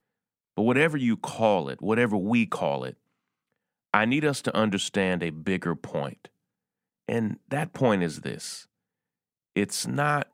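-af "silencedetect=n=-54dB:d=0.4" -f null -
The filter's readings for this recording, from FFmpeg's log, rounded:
silence_start: 0.00
silence_end: 0.57 | silence_duration: 0.57
silence_start: 2.94
silence_end: 3.94 | silence_duration: 1.00
silence_start: 6.28
silence_end: 7.08 | silence_duration: 0.80
silence_start: 8.65
silence_end: 9.56 | silence_duration: 0.91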